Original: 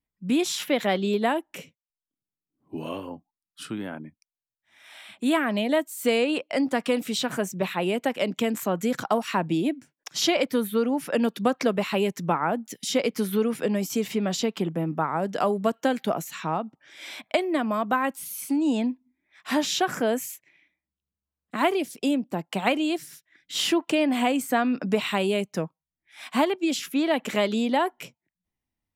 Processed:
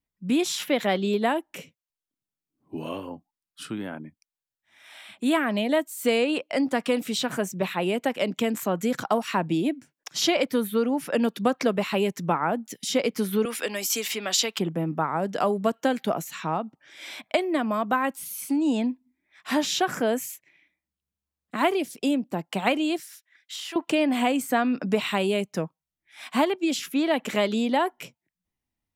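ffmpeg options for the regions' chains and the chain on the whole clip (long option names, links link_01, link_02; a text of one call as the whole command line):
ffmpeg -i in.wav -filter_complex "[0:a]asettb=1/sr,asplit=3[link_01][link_02][link_03];[link_01]atrim=end=13.454[link_04];[link_02]atrim=start=13.45:end=14.59,asetpts=PTS-STARTPTS,afade=type=in:duration=0.004:curve=qsin,afade=type=out:start_time=1.136:duration=0.004:curve=qsin,highpass=frequency=230:width=0.5412,highpass=frequency=230:width=1.3066,tiltshelf=frequency=840:gain=-9[link_05];[link_03]atrim=start=14.586[link_06];[link_04][link_05]acrossfade=duration=0.004:curve1=hsin:curve2=qsin[link_07];[link_07][link_06]acrossfade=duration=0.004:curve1=qsin:curve2=hsin,asettb=1/sr,asplit=3[link_08][link_09][link_10];[link_08]atrim=end=23.004[link_11];[link_09]atrim=start=23:end=23.76,asetpts=PTS-STARTPTS,afade=type=in:duration=0.004:curve=qsin,afade=type=out:start_time=0.756:duration=0.004:curve=qsin,highpass=830,acompressor=threshold=-32dB:ratio=10:attack=3.2:release=140:knee=1:detection=peak[link_12];[link_10]atrim=start=23.756[link_13];[link_11][link_12]acrossfade=duration=0.004:curve1=hsin:curve2=qsin[link_14];[link_14][link_13]acrossfade=duration=0.004:curve1=qsin:curve2=hsin" out.wav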